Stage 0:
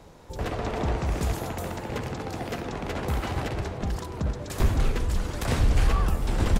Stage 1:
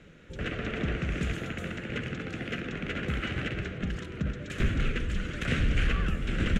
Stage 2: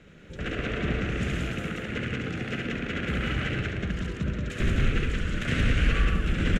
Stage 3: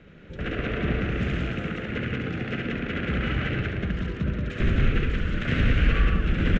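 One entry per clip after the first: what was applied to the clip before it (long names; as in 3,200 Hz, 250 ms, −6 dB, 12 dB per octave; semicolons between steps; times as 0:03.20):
drawn EQ curve 100 Hz 0 dB, 170 Hz +7 dB, 570 Hz −1 dB, 930 Hz −16 dB, 1,400 Hz +8 dB, 2,900 Hz +10 dB, 4,800 Hz −7 dB, 6,700 Hz −2 dB, 14,000 Hz −19 dB; level −5.5 dB
loudspeakers that aren't time-aligned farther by 24 metres −3 dB, 61 metres −2 dB
high-frequency loss of the air 170 metres; level +2.5 dB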